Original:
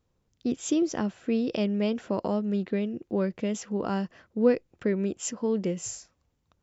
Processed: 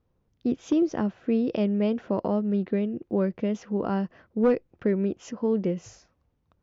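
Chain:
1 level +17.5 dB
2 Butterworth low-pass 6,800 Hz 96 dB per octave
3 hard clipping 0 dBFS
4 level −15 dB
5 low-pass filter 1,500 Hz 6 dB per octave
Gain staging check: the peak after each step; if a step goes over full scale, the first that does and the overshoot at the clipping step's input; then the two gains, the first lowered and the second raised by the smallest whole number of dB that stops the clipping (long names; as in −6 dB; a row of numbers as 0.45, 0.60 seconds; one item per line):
+6.0, +6.0, 0.0, −15.0, −15.0 dBFS
step 1, 6.0 dB
step 1 +11.5 dB, step 4 −9 dB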